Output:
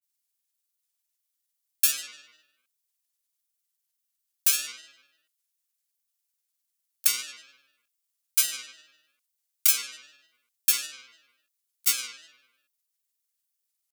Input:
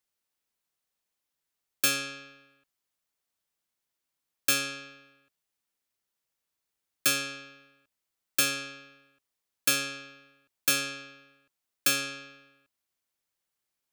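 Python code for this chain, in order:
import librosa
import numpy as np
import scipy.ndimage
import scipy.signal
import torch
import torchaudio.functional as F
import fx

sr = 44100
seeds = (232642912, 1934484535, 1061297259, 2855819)

y = scipy.signal.lfilter([1.0, -0.97], [1.0], x)
y = fx.granulator(y, sr, seeds[0], grain_ms=100.0, per_s=20.0, spray_ms=22.0, spread_st=3)
y = F.gain(torch.from_numpy(y), 5.5).numpy()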